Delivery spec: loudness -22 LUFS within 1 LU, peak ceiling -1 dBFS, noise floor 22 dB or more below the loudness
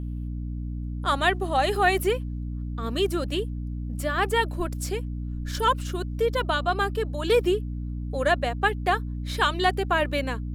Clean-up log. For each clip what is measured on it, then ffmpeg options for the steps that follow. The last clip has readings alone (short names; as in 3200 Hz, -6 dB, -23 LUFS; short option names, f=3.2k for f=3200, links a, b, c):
hum 60 Hz; harmonics up to 300 Hz; hum level -29 dBFS; loudness -26.0 LUFS; peak -8.0 dBFS; loudness target -22.0 LUFS
-> -af "bandreject=f=60:t=h:w=6,bandreject=f=120:t=h:w=6,bandreject=f=180:t=h:w=6,bandreject=f=240:t=h:w=6,bandreject=f=300:t=h:w=6"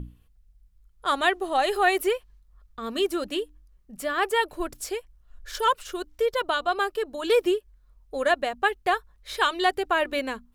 hum none; loudness -26.0 LUFS; peak -9.0 dBFS; loudness target -22.0 LUFS
-> -af "volume=4dB"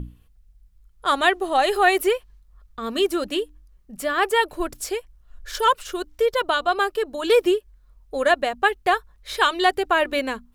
loudness -22.0 LUFS; peak -5.0 dBFS; noise floor -56 dBFS